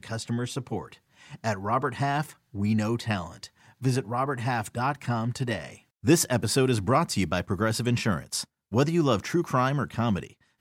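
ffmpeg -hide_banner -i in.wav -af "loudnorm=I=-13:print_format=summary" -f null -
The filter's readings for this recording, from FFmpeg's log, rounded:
Input Integrated:    -27.2 LUFS
Input True Peak:      -8.5 dBTP
Input LRA:             4.7 LU
Input Threshold:     -37.5 LUFS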